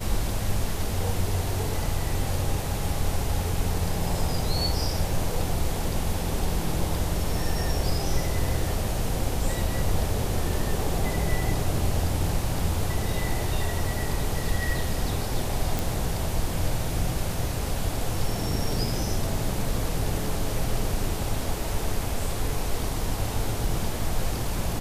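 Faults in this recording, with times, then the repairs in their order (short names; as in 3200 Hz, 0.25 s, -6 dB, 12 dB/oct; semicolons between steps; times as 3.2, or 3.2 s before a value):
15.79 pop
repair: de-click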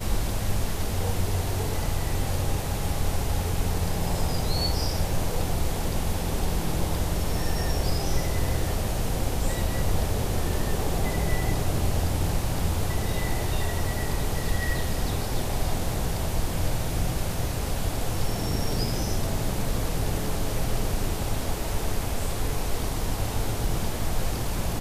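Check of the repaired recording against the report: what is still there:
none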